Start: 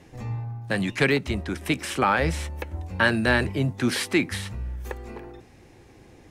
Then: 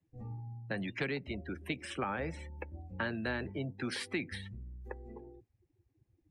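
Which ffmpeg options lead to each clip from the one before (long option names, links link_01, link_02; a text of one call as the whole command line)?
ffmpeg -i in.wav -filter_complex "[0:a]afftdn=noise_reduction=28:noise_floor=-35,acrossover=split=160|490[link_01][link_02][link_03];[link_01]acompressor=threshold=-37dB:ratio=4[link_04];[link_02]acompressor=threshold=-30dB:ratio=4[link_05];[link_03]acompressor=threshold=-27dB:ratio=4[link_06];[link_04][link_05][link_06]amix=inputs=3:normalize=0,volume=-8.5dB" out.wav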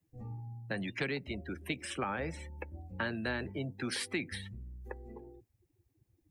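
ffmpeg -i in.wav -af "highshelf=frequency=6300:gain=9.5" out.wav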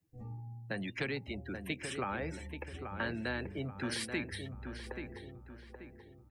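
ffmpeg -i in.wav -filter_complex "[0:a]asplit=2[link_01][link_02];[link_02]adelay=833,lowpass=frequency=2400:poles=1,volume=-7dB,asplit=2[link_03][link_04];[link_04]adelay=833,lowpass=frequency=2400:poles=1,volume=0.41,asplit=2[link_05][link_06];[link_06]adelay=833,lowpass=frequency=2400:poles=1,volume=0.41,asplit=2[link_07][link_08];[link_08]adelay=833,lowpass=frequency=2400:poles=1,volume=0.41,asplit=2[link_09][link_10];[link_10]adelay=833,lowpass=frequency=2400:poles=1,volume=0.41[link_11];[link_01][link_03][link_05][link_07][link_09][link_11]amix=inputs=6:normalize=0,volume=-1.5dB" out.wav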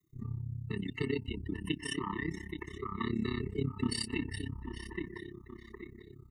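ffmpeg -i in.wav -af "afftfilt=real='re*pow(10,12/40*sin(2*PI*(1.2*log(max(b,1)*sr/1024/100)/log(2)-(0.35)*(pts-256)/sr)))':imag='im*pow(10,12/40*sin(2*PI*(1.2*log(max(b,1)*sr/1024/100)/log(2)-(0.35)*(pts-256)/sr)))':win_size=1024:overlap=0.75,tremolo=f=33:d=0.919,afftfilt=real='re*eq(mod(floor(b*sr/1024/440),2),0)':imag='im*eq(mod(floor(b*sr/1024/440),2),0)':win_size=1024:overlap=0.75,volume=6.5dB" out.wav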